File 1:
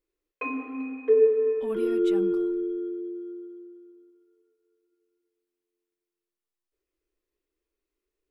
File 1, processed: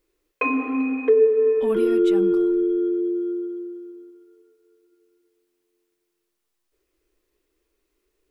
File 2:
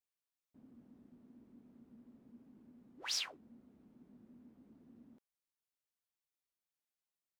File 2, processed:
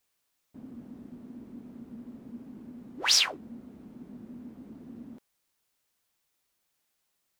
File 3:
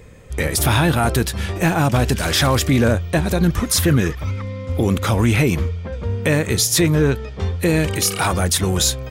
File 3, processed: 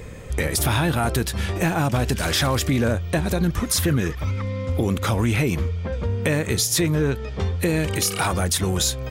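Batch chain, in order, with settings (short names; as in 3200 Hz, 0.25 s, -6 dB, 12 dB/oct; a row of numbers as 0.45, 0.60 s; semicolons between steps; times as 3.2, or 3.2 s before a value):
compressor 2:1, threshold -33 dBFS; normalise peaks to -9 dBFS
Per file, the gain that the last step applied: +12.0, +16.0, +6.0 dB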